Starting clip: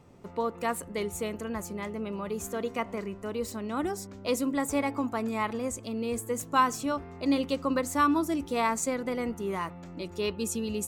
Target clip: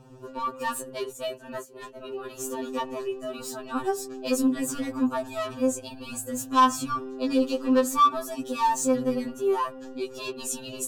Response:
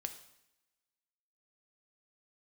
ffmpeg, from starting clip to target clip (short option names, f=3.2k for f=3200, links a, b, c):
-filter_complex "[0:a]asettb=1/sr,asplit=3[a][b][c];[a]atrim=end=0.944[d];[b]atrim=start=0.94:end=2.25,asetpts=PTS-STARTPTS,afade=t=in:d=0.004:c=qsin,afade=t=out:st=1.306:d=0.004:c=qsin,agate=range=-16dB:threshold=-34dB:ratio=16:detection=peak[e];[c]atrim=start=2.246[f];[d][e]acrossfade=d=0.004:c1=hsin:c2=qsin[g];[g][f]acrossfade=d=0.004:c1=qsin:c2=hsin,asoftclip=type=tanh:threshold=-24.5dB,asuperstop=centerf=2100:order=4:qfactor=4.5,afftfilt=real='re*2.45*eq(mod(b,6),0)':imag='im*2.45*eq(mod(b,6),0)':win_size=2048:overlap=0.75,volume=7dB"